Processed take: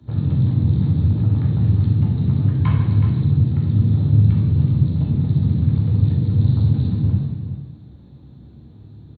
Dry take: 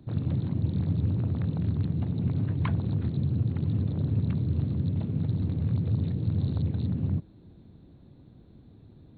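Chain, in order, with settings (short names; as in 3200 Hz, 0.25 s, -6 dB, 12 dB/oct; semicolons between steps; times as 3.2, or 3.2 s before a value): echo 0.372 s -11 dB; reverb RT60 1.0 s, pre-delay 3 ms, DRR -3.5 dB; gain -4.5 dB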